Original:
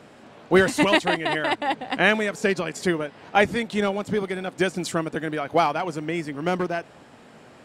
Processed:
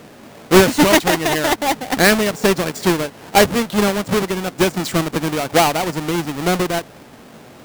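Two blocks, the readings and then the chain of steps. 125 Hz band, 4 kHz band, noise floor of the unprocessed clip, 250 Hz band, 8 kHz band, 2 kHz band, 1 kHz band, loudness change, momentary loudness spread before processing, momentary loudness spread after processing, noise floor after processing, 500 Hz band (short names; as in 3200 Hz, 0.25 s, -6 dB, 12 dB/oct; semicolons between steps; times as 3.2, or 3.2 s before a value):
+8.5 dB, +8.5 dB, -49 dBFS, +7.5 dB, +14.0 dB, +4.0 dB, +6.0 dB, +6.5 dB, 9 LU, 8 LU, -42 dBFS, +6.5 dB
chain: half-waves squared off; gain +2.5 dB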